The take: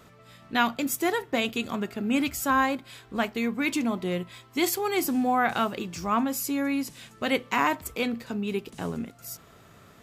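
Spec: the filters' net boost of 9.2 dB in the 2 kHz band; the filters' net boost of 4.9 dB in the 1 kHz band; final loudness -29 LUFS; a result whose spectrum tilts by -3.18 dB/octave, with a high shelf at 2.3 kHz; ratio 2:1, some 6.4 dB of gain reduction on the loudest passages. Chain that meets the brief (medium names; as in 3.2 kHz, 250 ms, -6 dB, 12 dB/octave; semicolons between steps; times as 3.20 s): peaking EQ 1 kHz +3 dB; peaking EQ 2 kHz +8 dB; treble shelf 2.3 kHz +5 dB; compression 2:1, threshold -24 dBFS; trim -2.5 dB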